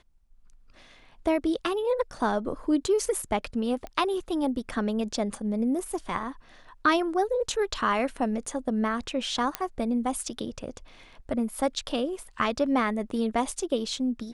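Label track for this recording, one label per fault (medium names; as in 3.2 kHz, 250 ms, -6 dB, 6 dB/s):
3.870000	3.870000	pop -24 dBFS
9.550000	9.550000	pop -10 dBFS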